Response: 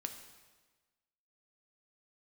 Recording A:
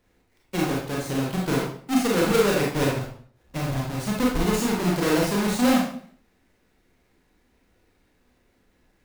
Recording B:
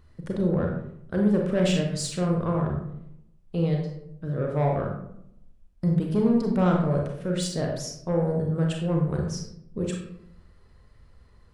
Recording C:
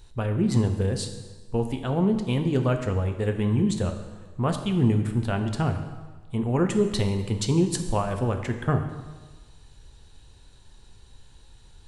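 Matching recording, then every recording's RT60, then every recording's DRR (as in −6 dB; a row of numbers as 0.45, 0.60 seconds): C; 0.55, 0.75, 1.3 seconds; −3.5, 0.0, 5.5 decibels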